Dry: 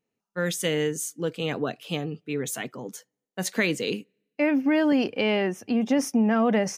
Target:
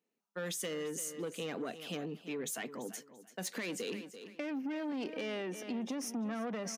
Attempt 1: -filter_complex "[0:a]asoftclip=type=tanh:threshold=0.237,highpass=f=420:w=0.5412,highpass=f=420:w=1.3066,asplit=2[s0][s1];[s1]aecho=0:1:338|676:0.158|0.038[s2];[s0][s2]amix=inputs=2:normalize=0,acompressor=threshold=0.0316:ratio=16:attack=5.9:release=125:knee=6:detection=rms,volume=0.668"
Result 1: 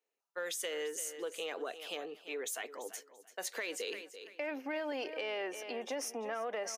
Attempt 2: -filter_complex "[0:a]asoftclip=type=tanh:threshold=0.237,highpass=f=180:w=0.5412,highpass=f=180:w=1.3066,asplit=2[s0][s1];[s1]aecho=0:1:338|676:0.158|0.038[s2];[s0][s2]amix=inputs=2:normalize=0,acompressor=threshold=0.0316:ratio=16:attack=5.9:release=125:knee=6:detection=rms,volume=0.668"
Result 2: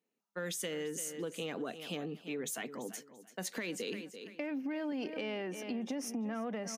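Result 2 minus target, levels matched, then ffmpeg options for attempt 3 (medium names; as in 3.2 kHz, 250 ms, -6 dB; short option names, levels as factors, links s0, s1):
saturation: distortion -13 dB
-filter_complex "[0:a]asoftclip=type=tanh:threshold=0.0794,highpass=f=180:w=0.5412,highpass=f=180:w=1.3066,asplit=2[s0][s1];[s1]aecho=0:1:338|676:0.158|0.038[s2];[s0][s2]amix=inputs=2:normalize=0,acompressor=threshold=0.0316:ratio=16:attack=5.9:release=125:knee=6:detection=rms,volume=0.668"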